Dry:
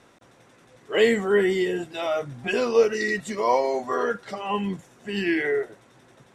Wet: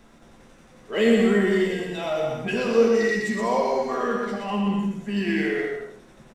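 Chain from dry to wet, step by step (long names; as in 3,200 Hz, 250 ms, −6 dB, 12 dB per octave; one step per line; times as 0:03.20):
parametric band 210 Hz +11.5 dB 0.38 octaves
bouncing-ball delay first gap 120 ms, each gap 0.65×, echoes 5
in parallel at −8 dB: hard clipping −29.5 dBFS, distortion −3 dB
on the sum: tuned comb filter 77 Hz, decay 0.17 s, harmonics all, mix 70%
on a send at −8 dB: convolution reverb RT60 0.35 s, pre-delay 45 ms
on the sum: background noise brown −56 dBFS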